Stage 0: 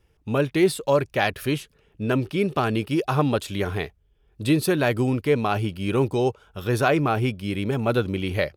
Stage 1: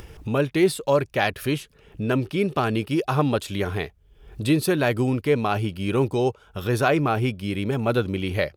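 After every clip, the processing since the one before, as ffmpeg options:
ffmpeg -i in.wav -af "acompressor=mode=upward:threshold=-25dB:ratio=2.5" out.wav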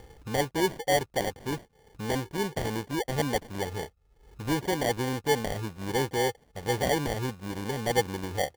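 ffmpeg -i in.wav -af "equalizer=frequency=500:width_type=o:width=0.33:gain=11,equalizer=frequency=800:width_type=o:width=0.33:gain=-3,equalizer=frequency=10000:width_type=o:width=0.33:gain=-10,acrusher=samples=34:mix=1:aa=0.000001,volume=-9dB" out.wav

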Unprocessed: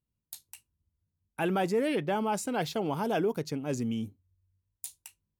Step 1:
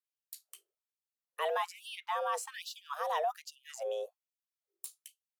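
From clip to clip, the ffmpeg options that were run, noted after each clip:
ffmpeg -i in.wav -af "afreqshift=300,afftfilt=real='re*gte(b*sr/1024,320*pow(2700/320,0.5+0.5*sin(2*PI*1.2*pts/sr)))':imag='im*gte(b*sr/1024,320*pow(2700/320,0.5+0.5*sin(2*PI*1.2*pts/sr)))':win_size=1024:overlap=0.75,volume=-4dB" out.wav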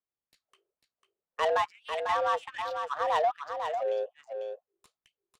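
ffmpeg -i in.wav -af "adynamicsmooth=sensitivity=6.5:basefreq=1300,aecho=1:1:497:0.473,volume=6.5dB" out.wav

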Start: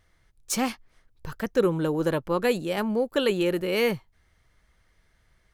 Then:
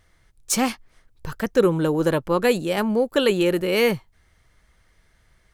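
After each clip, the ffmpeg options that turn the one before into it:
ffmpeg -i in.wav -af "equalizer=frequency=8400:width=1.5:gain=2.5,volume=4.5dB" out.wav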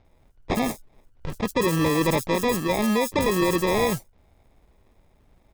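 ffmpeg -i in.wav -filter_complex "[0:a]acrusher=samples=30:mix=1:aa=0.000001,acrossover=split=5700[link_01][link_02];[link_02]adelay=50[link_03];[link_01][link_03]amix=inputs=2:normalize=0,alimiter=limit=-15dB:level=0:latency=1:release=17,volume=1dB" out.wav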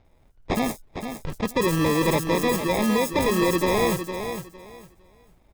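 ffmpeg -i in.wav -af "aecho=1:1:457|914|1371:0.376|0.0789|0.0166" out.wav

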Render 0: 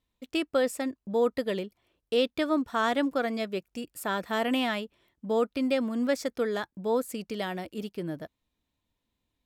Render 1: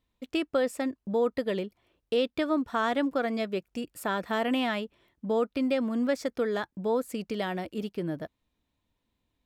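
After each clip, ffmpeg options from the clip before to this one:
ffmpeg -i in.wav -af "highshelf=frequency=4500:gain=-6.5,acompressor=threshold=-32dB:ratio=1.5,volume=3dB" out.wav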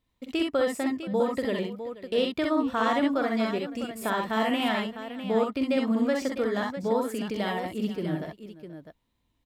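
ffmpeg -i in.wav -af "aecho=1:1:45|63|64|480|653:0.398|0.596|0.596|0.126|0.299" out.wav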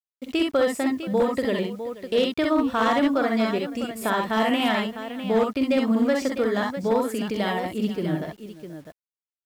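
ffmpeg -i in.wav -af "asoftclip=type=hard:threshold=-18dB,acrusher=bits=9:mix=0:aa=0.000001,volume=4dB" out.wav

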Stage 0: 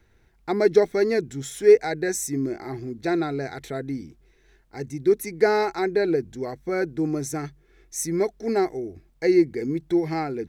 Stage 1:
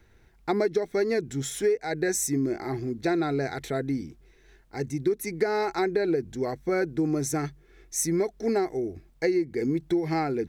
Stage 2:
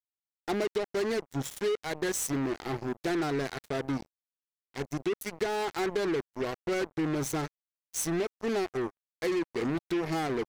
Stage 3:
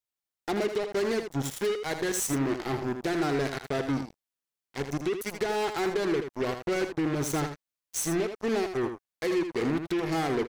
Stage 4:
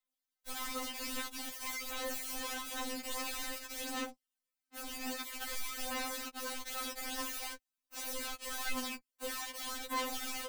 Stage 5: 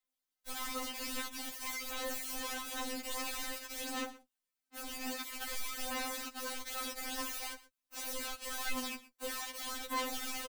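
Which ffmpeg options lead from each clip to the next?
ffmpeg -i in.wav -af "acompressor=threshold=-23dB:ratio=12,volume=2dB" out.wav
ffmpeg -i in.wav -filter_complex "[0:a]asplit=2[link_01][link_02];[link_02]alimiter=limit=-22dB:level=0:latency=1:release=23,volume=-2dB[link_03];[link_01][link_03]amix=inputs=2:normalize=0,acrusher=bits=3:mix=0:aa=0.5,volume=-8.5dB" out.wav
ffmpeg -i in.wav -filter_complex "[0:a]asplit=2[link_01][link_02];[link_02]alimiter=level_in=3dB:limit=-24dB:level=0:latency=1:release=355,volume=-3dB,volume=-1.5dB[link_03];[link_01][link_03]amix=inputs=2:normalize=0,aecho=1:1:80:0.398,volume=-2dB" out.wav
ffmpeg -i in.wav -af "aeval=exprs='(mod(50.1*val(0)+1,2)-1)/50.1':channel_layout=same,aphaser=in_gain=1:out_gain=1:delay=4.3:decay=0.52:speed=0.5:type=sinusoidal,afftfilt=real='re*3.46*eq(mod(b,12),0)':imag='im*3.46*eq(mod(b,12),0)':win_size=2048:overlap=0.75" out.wav
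ffmpeg -i in.wav -af "aecho=1:1:122:0.126" out.wav

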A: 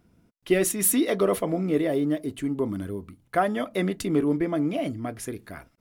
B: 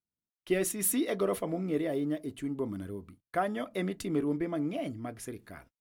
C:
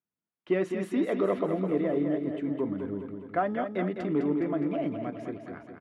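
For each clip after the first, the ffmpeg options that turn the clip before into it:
ffmpeg -i in.wav -af "agate=range=-31dB:threshold=-48dB:ratio=16:detection=peak,volume=-7dB" out.wav
ffmpeg -i in.wav -filter_complex "[0:a]asplit=2[link_01][link_02];[link_02]volume=24.5dB,asoftclip=hard,volume=-24.5dB,volume=-7.5dB[link_03];[link_01][link_03]amix=inputs=2:normalize=0,highpass=130,lowpass=2000,aecho=1:1:207|414|621|828|1035|1242|1449:0.447|0.255|0.145|0.0827|0.0472|0.0269|0.0153" out.wav

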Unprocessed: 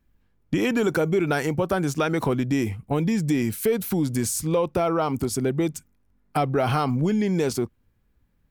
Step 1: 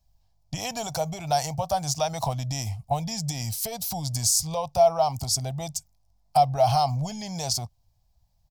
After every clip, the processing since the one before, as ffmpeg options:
ffmpeg -i in.wav -af "firequalizer=gain_entry='entry(130,0);entry(190,-12);entry(360,-28);entry(680,9);entry(1400,-16);entry(4900,12);entry(9200,2)':delay=0.05:min_phase=1" out.wav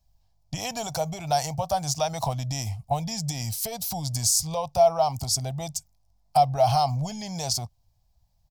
ffmpeg -i in.wav -af anull out.wav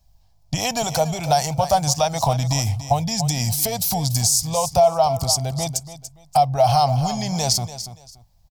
ffmpeg -i in.wav -af "aecho=1:1:287|574:0.224|0.047,alimiter=limit=-15.5dB:level=0:latency=1:release=387,volume=8.5dB" out.wav

